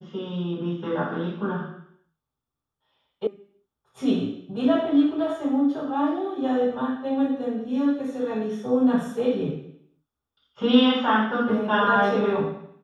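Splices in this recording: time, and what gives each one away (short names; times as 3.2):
3.27 sound cut off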